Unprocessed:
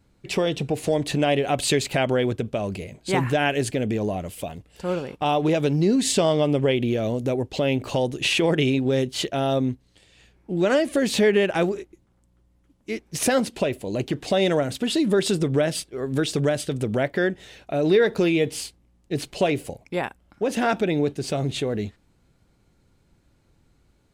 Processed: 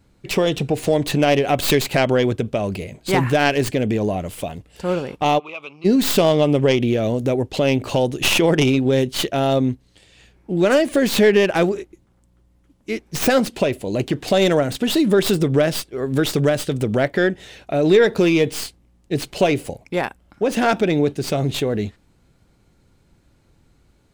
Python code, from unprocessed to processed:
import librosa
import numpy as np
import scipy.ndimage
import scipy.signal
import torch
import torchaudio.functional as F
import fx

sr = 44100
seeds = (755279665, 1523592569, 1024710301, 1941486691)

y = fx.tracing_dist(x, sr, depth_ms=0.14)
y = fx.double_bandpass(y, sr, hz=1700.0, octaves=1.1, at=(5.38, 5.84), fade=0.02)
y = y * librosa.db_to_amplitude(4.5)